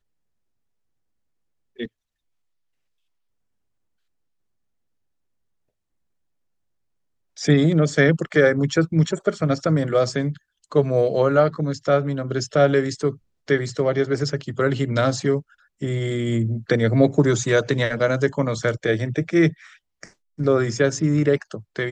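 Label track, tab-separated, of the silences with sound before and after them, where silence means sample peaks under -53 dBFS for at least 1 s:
1.880000	7.370000	silence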